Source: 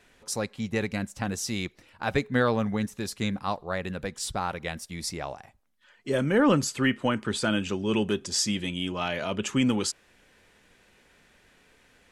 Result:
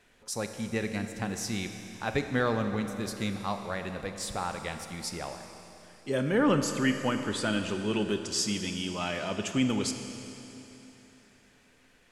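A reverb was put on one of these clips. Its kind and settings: Schroeder reverb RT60 3.4 s, combs from 27 ms, DRR 6.5 dB; gain -3.5 dB

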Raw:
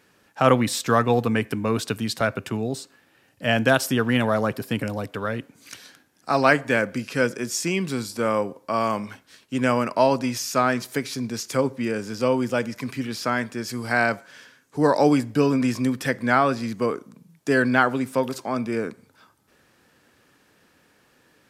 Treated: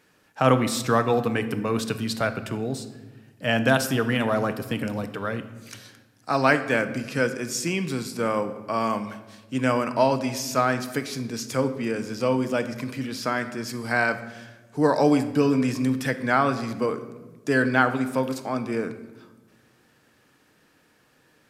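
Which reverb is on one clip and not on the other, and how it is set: shoebox room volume 880 m³, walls mixed, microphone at 0.52 m; gain -2 dB

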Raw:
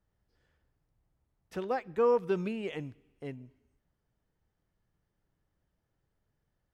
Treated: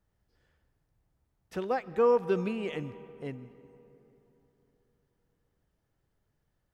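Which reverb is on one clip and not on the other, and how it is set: digital reverb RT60 3.6 s, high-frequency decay 0.45×, pre-delay 90 ms, DRR 16.5 dB; gain +2 dB

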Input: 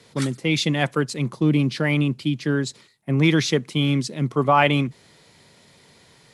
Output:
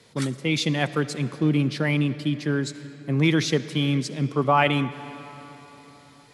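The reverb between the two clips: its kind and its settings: digital reverb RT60 4.2 s, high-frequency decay 0.65×, pre-delay 25 ms, DRR 13.5 dB; gain -2.5 dB

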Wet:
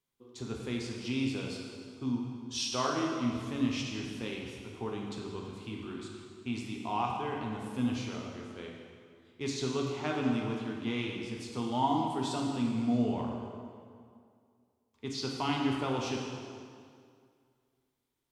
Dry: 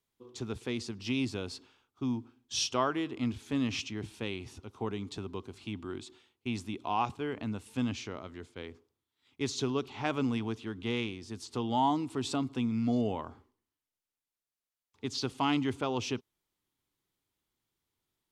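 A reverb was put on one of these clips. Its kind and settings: plate-style reverb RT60 2.2 s, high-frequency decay 0.8×, DRR -1.5 dB; gain -4 dB

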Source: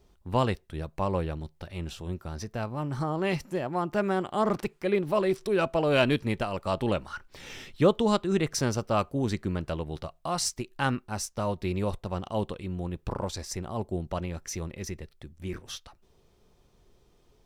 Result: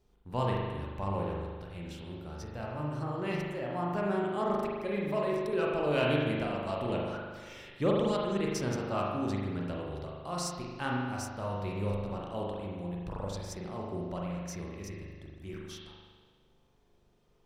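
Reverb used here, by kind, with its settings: spring tank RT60 1.5 s, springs 40 ms, chirp 40 ms, DRR -3 dB; gain -9 dB

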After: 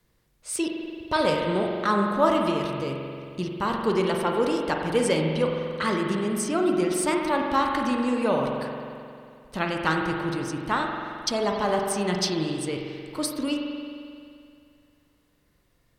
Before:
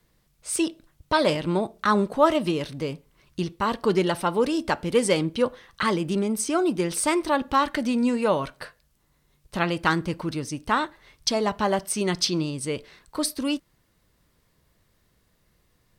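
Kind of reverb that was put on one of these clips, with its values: spring tank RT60 2.4 s, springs 44 ms, chirp 50 ms, DRR 1 dB; gain -3 dB

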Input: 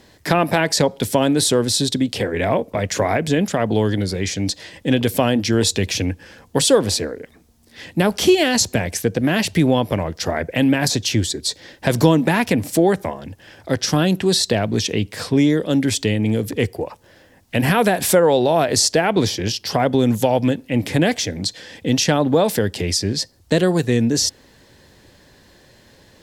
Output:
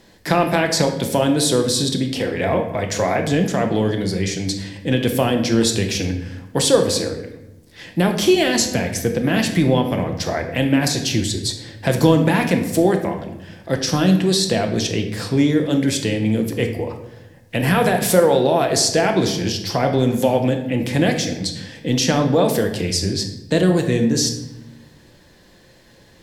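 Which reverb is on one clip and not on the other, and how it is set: shoebox room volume 360 m³, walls mixed, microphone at 0.77 m; gain -2 dB

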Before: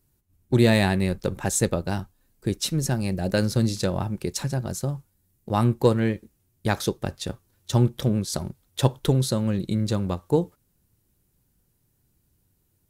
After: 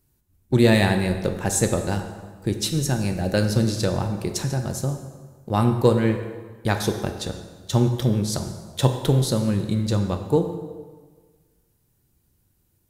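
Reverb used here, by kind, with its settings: plate-style reverb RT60 1.5 s, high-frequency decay 0.75×, DRR 5.5 dB; gain +1 dB

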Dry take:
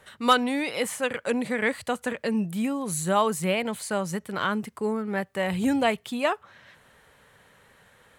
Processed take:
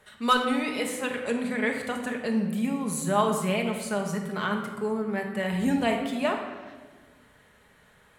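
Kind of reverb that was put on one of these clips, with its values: shoebox room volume 1100 m³, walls mixed, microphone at 1.4 m; gain -4 dB

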